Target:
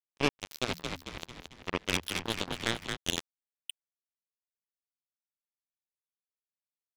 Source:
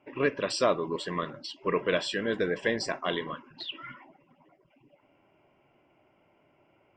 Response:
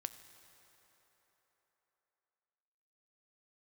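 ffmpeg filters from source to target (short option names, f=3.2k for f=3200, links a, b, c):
-filter_complex "[0:a]firequalizer=gain_entry='entry(310,0);entry(710,-24);entry(2700,3);entry(7300,-10)':delay=0.05:min_phase=1,acrusher=bits=3:mix=0:aa=0.5,asplit=3[a][b][c];[a]afade=t=out:st=0.67:d=0.02[d];[b]asplit=8[e][f][g][h][i][j][k][l];[f]adelay=223,afreqshift=-88,volume=-5dB[m];[g]adelay=446,afreqshift=-176,volume=-10.4dB[n];[h]adelay=669,afreqshift=-264,volume=-15.7dB[o];[i]adelay=892,afreqshift=-352,volume=-21.1dB[p];[j]adelay=1115,afreqshift=-440,volume=-26.4dB[q];[k]adelay=1338,afreqshift=-528,volume=-31.8dB[r];[l]adelay=1561,afreqshift=-616,volume=-37.1dB[s];[e][m][n][o][p][q][r][s]amix=inputs=8:normalize=0,afade=t=in:st=0.67:d=0.02,afade=t=out:st=2.95:d=0.02[t];[c]afade=t=in:st=2.95:d=0.02[u];[d][t][u]amix=inputs=3:normalize=0,volume=5dB"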